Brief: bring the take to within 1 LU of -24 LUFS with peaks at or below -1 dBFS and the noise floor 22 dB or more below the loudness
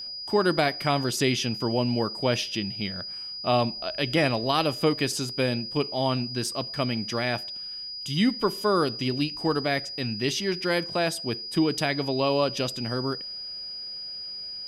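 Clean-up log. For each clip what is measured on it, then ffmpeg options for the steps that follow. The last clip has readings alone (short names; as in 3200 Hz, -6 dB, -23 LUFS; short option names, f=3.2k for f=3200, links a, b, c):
steady tone 4900 Hz; tone level -34 dBFS; loudness -26.5 LUFS; peak -10.5 dBFS; loudness target -24.0 LUFS
-> -af "bandreject=f=4.9k:w=30"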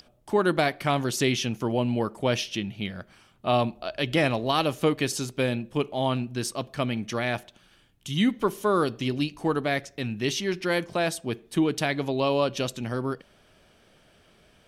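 steady tone none; loudness -27.0 LUFS; peak -11.0 dBFS; loudness target -24.0 LUFS
-> -af "volume=3dB"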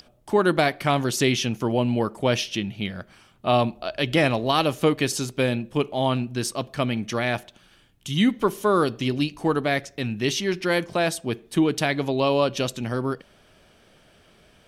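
loudness -24.0 LUFS; peak -8.0 dBFS; noise floor -57 dBFS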